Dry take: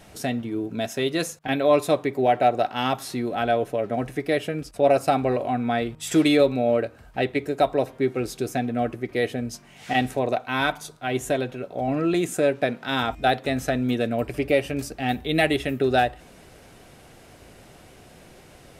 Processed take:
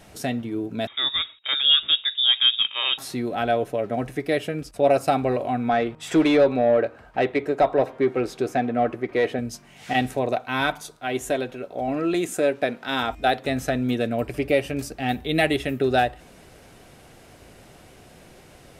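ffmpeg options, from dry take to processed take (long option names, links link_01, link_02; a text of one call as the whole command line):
ffmpeg -i in.wav -filter_complex "[0:a]asettb=1/sr,asplit=3[link_01][link_02][link_03];[link_01]atrim=end=0.874[link_04];[link_02]atrim=start=0.87:end=2.98,asetpts=PTS-STARTPTS,afade=type=in:duration=0.004:curve=qsin,afade=type=out:start_time=2.106:duration=0.004:curve=qsin,lowpass=frequency=3300:width_type=q:width=0.5098,lowpass=frequency=3300:width_type=q:width=0.6013,lowpass=frequency=3300:width_type=q:width=0.9,lowpass=frequency=3300:width_type=q:width=2.563,afreqshift=-3900[link_05];[link_03]atrim=start=2.976[link_06];[link_04][link_05]acrossfade=duration=0.004:curve1=hsin:curve2=qsin[link_07];[link_07][link_06]acrossfade=duration=0.004:curve1=qsin:curve2=hsin,asettb=1/sr,asplit=3[link_08][link_09][link_10];[link_08]atrim=end=5.694[link_11];[link_09]atrim=start=5.69:end=9.39,asetpts=PTS-STARTPTS,afade=type=in:duration=0.004:curve=qsin,afade=type=out:start_time=3.696:duration=0.004:curve=qsin,asplit=2[link_12][link_13];[link_13]highpass=frequency=720:poles=1,volume=15dB,asoftclip=type=tanh:threshold=-7.5dB[link_14];[link_12][link_14]amix=inputs=2:normalize=0,lowpass=frequency=1100:poles=1,volume=-6dB[link_15];[link_10]atrim=start=9.386[link_16];[link_11][link_15]acrossfade=duration=0.004:curve1=hsin:curve2=qsin[link_17];[link_17][link_16]acrossfade=duration=0.004:curve1=qsin:curve2=hsin,asettb=1/sr,asplit=3[link_18][link_19][link_20];[link_18]atrim=end=10.814[link_21];[link_19]atrim=start=10.81:end=13.39,asetpts=PTS-STARTPTS,afade=type=in:duration=0.004:curve=qsin,afade=type=out:start_time=2.576:duration=0.004:curve=qsin,equalizer=frequency=140:width=1.5:gain=-7[link_22];[link_20]atrim=start=13.386[link_23];[link_21][link_22]acrossfade=duration=0.004:curve1=hsin:curve2=qsin[link_24];[link_24][link_23]acrossfade=duration=0.004:curve1=qsin:curve2=hsin" out.wav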